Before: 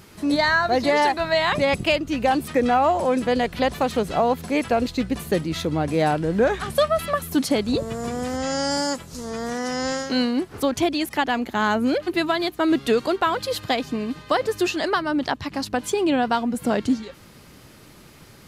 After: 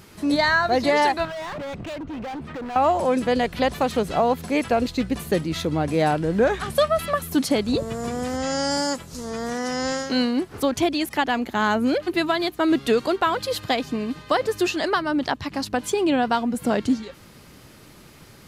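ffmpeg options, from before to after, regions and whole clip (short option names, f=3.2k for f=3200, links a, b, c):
-filter_complex "[0:a]asettb=1/sr,asplit=3[a][b][c];[a]atrim=end=1.254[d];[b]atrim=start=1.25:end=2.76,asetpts=PTS-STARTPTS,afade=t=in:d=0.004:c=qsin,afade=t=out:st=1.506:d=0.004:c=qsin,lowpass=2.1k,acompressor=threshold=-23dB:ratio=4:attack=3.2:release=140:knee=1:detection=peak,asoftclip=type=hard:threshold=-30dB[e];[c]atrim=start=2.756[f];[d][e]acrossfade=d=0.004:c1=hsin:c2=qsin[g];[g][f]acrossfade=d=0.004:c1=qsin:c2=hsin"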